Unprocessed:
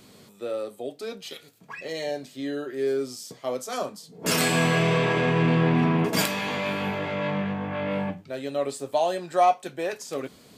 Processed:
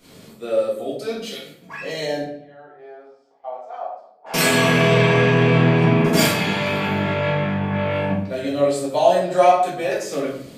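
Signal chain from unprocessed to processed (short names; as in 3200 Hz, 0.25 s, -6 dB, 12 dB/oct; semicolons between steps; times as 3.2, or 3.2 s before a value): 2.22–4.34 ladder band-pass 830 Hz, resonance 80%; gate -53 dBFS, range -6 dB; shoebox room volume 120 m³, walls mixed, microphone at 1.8 m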